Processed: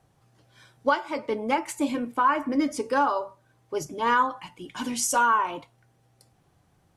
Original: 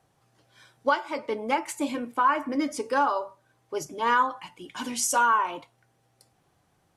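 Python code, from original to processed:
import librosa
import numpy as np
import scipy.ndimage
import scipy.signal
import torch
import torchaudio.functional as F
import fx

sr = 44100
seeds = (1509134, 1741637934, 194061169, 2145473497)

y = fx.low_shelf(x, sr, hz=220.0, db=8.0)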